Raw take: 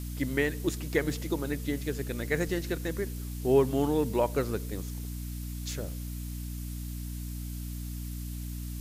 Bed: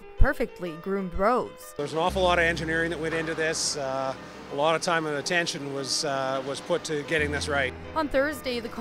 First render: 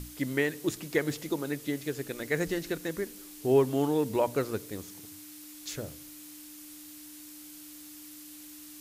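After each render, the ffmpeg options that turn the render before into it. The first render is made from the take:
-af "bandreject=f=60:t=h:w=6,bandreject=f=120:t=h:w=6,bandreject=f=180:t=h:w=6,bandreject=f=240:t=h:w=6"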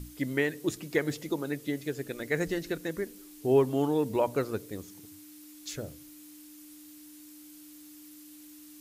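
-af "afftdn=nr=6:nf=-48"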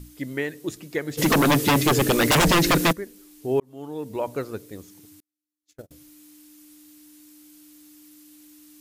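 -filter_complex "[0:a]asplit=3[s0][s1][s2];[s0]afade=t=out:st=1.17:d=0.02[s3];[s1]aeval=exprs='0.2*sin(PI/2*8.91*val(0)/0.2)':c=same,afade=t=in:st=1.17:d=0.02,afade=t=out:st=2.91:d=0.02[s4];[s2]afade=t=in:st=2.91:d=0.02[s5];[s3][s4][s5]amix=inputs=3:normalize=0,asettb=1/sr,asplit=3[s6][s7][s8];[s6]atrim=end=5.204[s9];[s7]atrim=start=5.2:end=5.91,asetpts=PTS-STARTPTS,afade=t=in:d=0.004:c=qsin,afade=t=out:st=0.706:d=0.004:c=qsin,agate=range=0.01:threshold=0.0158:ratio=16:release=100:detection=peak[s10];[s8]atrim=start=5.906[s11];[s9][s10]acrossfade=d=0.004:c1=hsin:c2=qsin[s12];[s12][s11]acrossfade=d=0.004:c1=qsin:c2=hsin,asplit=2[s13][s14];[s13]atrim=end=3.6,asetpts=PTS-STARTPTS,afade=t=out:st=3.596:d=0.004:c=hsin[s15];[s14]atrim=start=3.6,asetpts=PTS-STARTPTS,afade=t=in:d=0.69[s16];[s15][s16]concat=n=2:v=0:a=1"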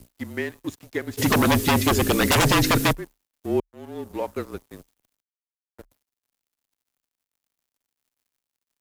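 -af "aeval=exprs='sgn(val(0))*max(abs(val(0))-0.0075,0)':c=same,afreqshift=-35"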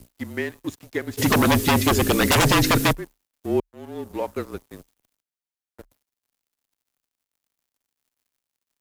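-af "volume=1.12"

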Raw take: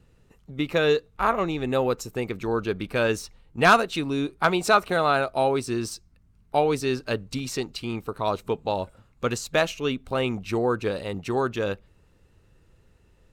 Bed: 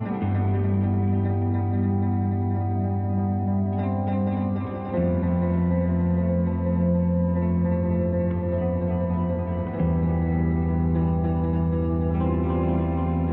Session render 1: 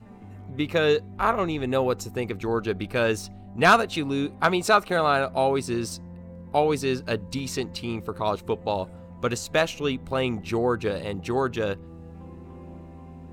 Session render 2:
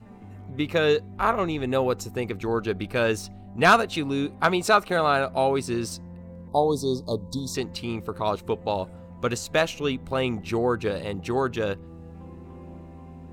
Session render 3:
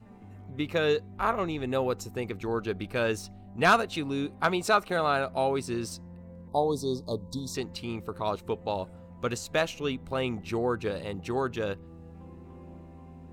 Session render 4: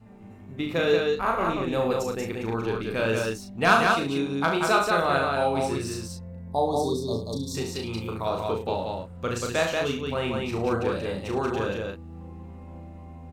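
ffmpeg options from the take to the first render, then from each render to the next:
-filter_complex "[1:a]volume=0.106[s0];[0:a][s0]amix=inputs=2:normalize=0"
-filter_complex "[0:a]asettb=1/sr,asplit=3[s0][s1][s2];[s0]atrim=end=6.484[s3];[s1]atrim=start=6.48:end=7.55,asetpts=PTS-STARTPTS,afade=t=in:d=0.004:c=qsin,afade=t=out:st=1.066:d=0.004:c=qsin,asuperstop=centerf=2000:order=20:qfactor=0.87[s4];[s2]atrim=start=7.546[s5];[s3][s4]acrossfade=d=0.004:c1=hsin:c2=qsin[s6];[s6][s5]acrossfade=d=0.004:c1=qsin:c2=hsin"
-af "volume=0.596"
-filter_complex "[0:a]asplit=2[s0][s1];[s1]adelay=36,volume=0.631[s2];[s0][s2]amix=inputs=2:normalize=0,aecho=1:1:69.97|183.7:0.398|0.708"

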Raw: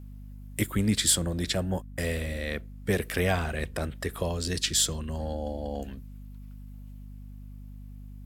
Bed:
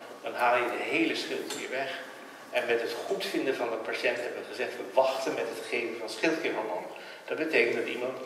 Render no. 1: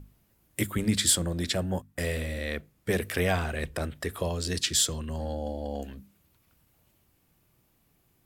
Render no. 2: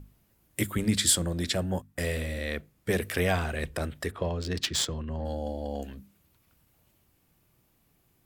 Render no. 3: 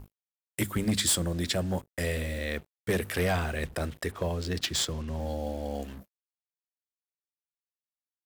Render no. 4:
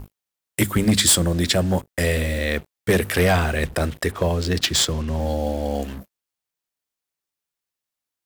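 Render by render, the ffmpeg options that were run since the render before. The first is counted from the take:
-af "bandreject=f=50:t=h:w=6,bandreject=f=100:t=h:w=6,bandreject=f=150:t=h:w=6,bandreject=f=200:t=h:w=6,bandreject=f=250:t=h:w=6"
-filter_complex "[0:a]asplit=3[s0][s1][s2];[s0]afade=t=out:st=4.1:d=0.02[s3];[s1]adynamicsmooth=sensitivity=2.5:basefreq=2500,afade=t=in:st=4.1:d=0.02,afade=t=out:st=5.24:d=0.02[s4];[s2]afade=t=in:st=5.24:d=0.02[s5];[s3][s4][s5]amix=inputs=3:normalize=0"
-af "volume=10.6,asoftclip=hard,volume=0.0944,acrusher=bits=7:mix=0:aa=0.5"
-af "volume=2.99"

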